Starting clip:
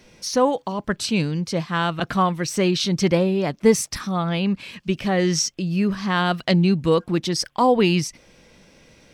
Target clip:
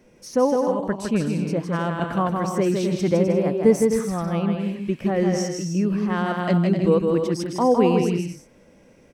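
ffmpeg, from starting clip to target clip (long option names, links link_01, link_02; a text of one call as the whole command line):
ffmpeg -i in.wav -filter_complex "[0:a]equalizer=frequency=250:width_type=o:width=1:gain=5,equalizer=frequency=500:width_type=o:width=1:gain=5,equalizer=frequency=4000:width_type=o:width=1:gain=-11,asplit=2[link_01][link_02];[link_02]aecho=0:1:160|256|313.6|348.2|368.9:0.631|0.398|0.251|0.158|0.1[link_03];[link_01][link_03]amix=inputs=2:normalize=0,volume=-6dB" out.wav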